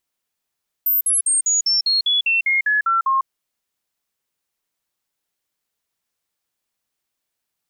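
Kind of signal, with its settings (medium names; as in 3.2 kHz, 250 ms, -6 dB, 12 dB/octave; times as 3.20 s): stepped sine 13.6 kHz down, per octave 3, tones 12, 0.15 s, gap 0.05 s -14.5 dBFS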